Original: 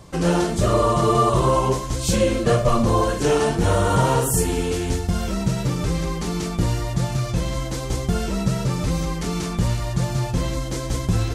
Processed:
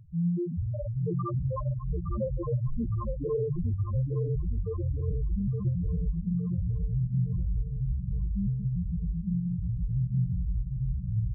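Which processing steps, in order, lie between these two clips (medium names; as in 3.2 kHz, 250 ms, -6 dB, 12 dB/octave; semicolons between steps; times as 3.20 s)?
low-pass 3.5 kHz 12 dB/octave; bass shelf 290 Hz +7 dB; compression, threshold -16 dBFS, peak gain reduction 7.5 dB; loudest bins only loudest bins 1; 8.26–9.77 s: comb of notches 610 Hz; feedback delay 864 ms, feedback 50%, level -7 dB; trim -2 dB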